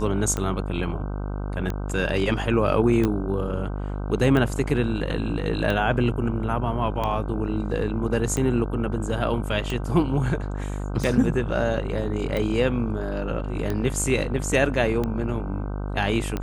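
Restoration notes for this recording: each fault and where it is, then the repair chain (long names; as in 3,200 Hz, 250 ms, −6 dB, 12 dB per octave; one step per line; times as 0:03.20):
mains buzz 50 Hz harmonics 31 −29 dBFS
scratch tick 45 rpm −14 dBFS
0:03.05: click −12 dBFS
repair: click removal
hum removal 50 Hz, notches 31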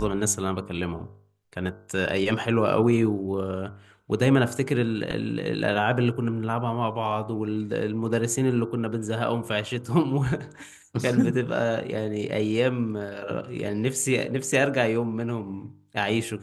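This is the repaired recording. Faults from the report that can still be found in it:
0:03.05: click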